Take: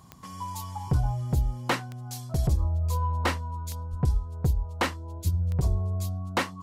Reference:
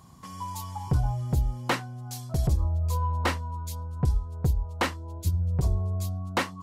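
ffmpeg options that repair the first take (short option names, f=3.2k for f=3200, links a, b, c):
-filter_complex "[0:a]adeclick=t=4,asplit=3[a][b][c];[a]afade=t=out:st=3.9:d=0.02[d];[b]highpass=f=140:w=0.5412,highpass=f=140:w=1.3066,afade=t=in:st=3.9:d=0.02,afade=t=out:st=4.02:d=0.02[e];[c]afade=t=in:st=4.02:d=0.02[f];[d][e][f]amix=inputs=3:normalize=0"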